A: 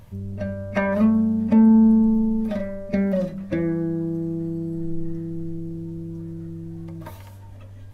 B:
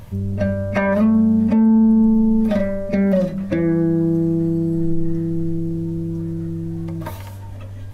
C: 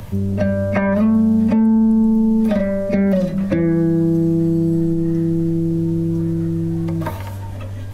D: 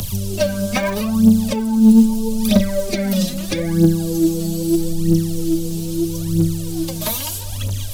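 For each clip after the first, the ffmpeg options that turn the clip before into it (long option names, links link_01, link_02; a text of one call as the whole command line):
ffmpeg -i in.wav -af "alimiter=limit=-17dB:level=0:latency=1:release=278,volume=8.5dB" out.wav
ffmpeg -i in.wav -filter_complex "[0:a]acrossover=split=110|240|2400[link_01][link_02][link_03][link_04];[link_01]acompressor=threshold=-36dB:ratio=4[link_05];[link_02]acompressor=threshold=-26dB:ratio=4[link_06];[link_03]acompressor=threshold=-26dB:ratio=4[link_07];[link_04]acompressor=threshold=-49dB:ratio=4[link_08];[link_05][link_06][link_07][link_08]amix=inputs=4:normalize=0,volume=6.5dB" out.wav
ffmpeg -i in.wav -af "aphaser=in_gain=1:out_gain=1:delay=4.9:decay=0.7:speed=0.78:type=triangular,aexciter=amount=7.6:drive=6.1:freq=2800,volume=-3.5dB" out.wav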